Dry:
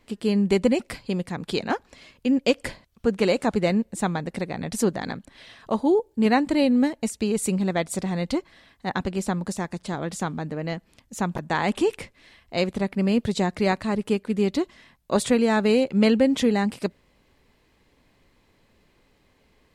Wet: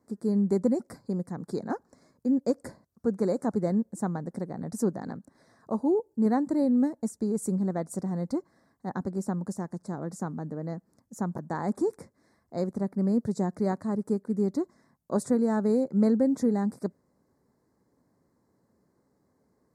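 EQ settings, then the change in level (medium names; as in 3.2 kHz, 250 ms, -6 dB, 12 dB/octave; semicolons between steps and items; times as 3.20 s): high-pass 170 Hz 12 dB/octave; Butterworth band-stop 2.9 kHz, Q 0.71; bass shelf 280 Hz +11.5 dB; -9.0 dB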